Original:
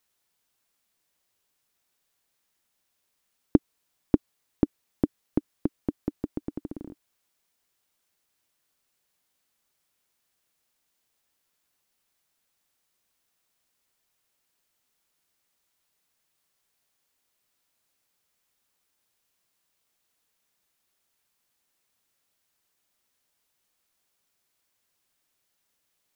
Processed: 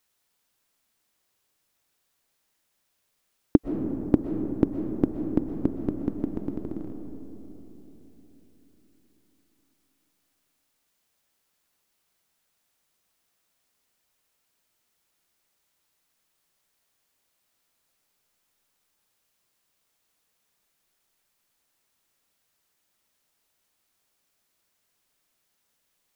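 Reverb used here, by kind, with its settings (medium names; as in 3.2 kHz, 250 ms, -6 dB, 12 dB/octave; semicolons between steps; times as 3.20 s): algorithmic reverb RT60 3.9 s, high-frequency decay 0.25×, pre-delay 85 ms, DRR 5.5 dB; trim +1.5 dB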